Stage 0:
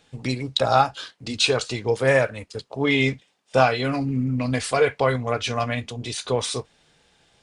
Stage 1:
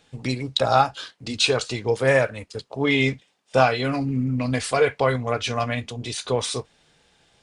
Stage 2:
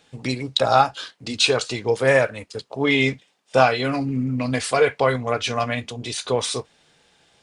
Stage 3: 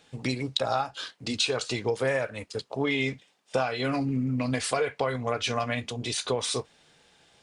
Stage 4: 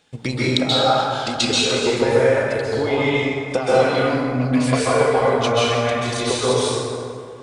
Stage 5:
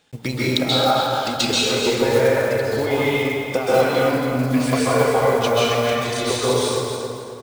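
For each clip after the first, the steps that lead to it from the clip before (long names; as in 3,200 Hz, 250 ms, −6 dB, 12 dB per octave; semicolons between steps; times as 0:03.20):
no processing that can be heard
low-shelf EQ 96 Hz −9 dB; level +2 dB
downward compressor 6 to 1, threshold −22 dBFS, peak gain reduction 12 dB; level −1.5 dB
transient designer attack +8 dB, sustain +2 dB; dense smooth reverb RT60 2.3 s, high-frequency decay 0.5×, pre-delay 120 ms, DRR −8.5 dB; level −1.5 dB
one scale factor per block 5 bits; repeating echo 272 ms, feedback 29%, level −9 dB; level −1 dB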